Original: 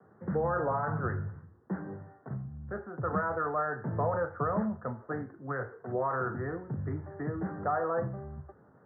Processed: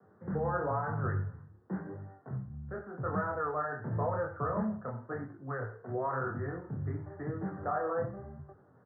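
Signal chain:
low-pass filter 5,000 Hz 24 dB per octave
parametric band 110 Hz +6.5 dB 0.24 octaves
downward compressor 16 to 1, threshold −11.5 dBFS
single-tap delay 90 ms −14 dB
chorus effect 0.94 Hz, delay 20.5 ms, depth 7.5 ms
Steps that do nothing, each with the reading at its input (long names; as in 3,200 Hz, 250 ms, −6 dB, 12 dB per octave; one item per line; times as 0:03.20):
low-pass filter 5,000 Hz: nothing at its input above 1,900 Hz
downward compressor, threshold −11.5 dBFS: peak of its input −17.0 dBFS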